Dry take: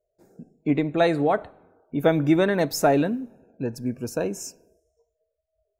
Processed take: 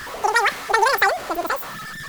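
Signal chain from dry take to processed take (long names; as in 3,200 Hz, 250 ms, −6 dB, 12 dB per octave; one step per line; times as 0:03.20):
converter with a step at zero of −29 dBFS
change of speed 2.78×
level +2 dB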